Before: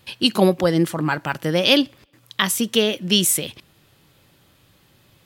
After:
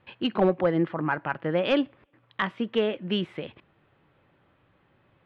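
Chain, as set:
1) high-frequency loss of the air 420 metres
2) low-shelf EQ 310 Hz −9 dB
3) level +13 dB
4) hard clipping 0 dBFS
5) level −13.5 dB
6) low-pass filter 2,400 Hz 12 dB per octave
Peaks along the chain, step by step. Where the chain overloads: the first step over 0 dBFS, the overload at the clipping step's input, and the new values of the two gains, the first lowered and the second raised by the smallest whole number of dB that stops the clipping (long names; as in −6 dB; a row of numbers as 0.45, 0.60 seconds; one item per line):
−5.5, −7.0, +6.0, 0.0, −13.5, −13.0 dBFS
step 3, 6.0 dB
step 3 +7 dB, step 5 −7.5 dB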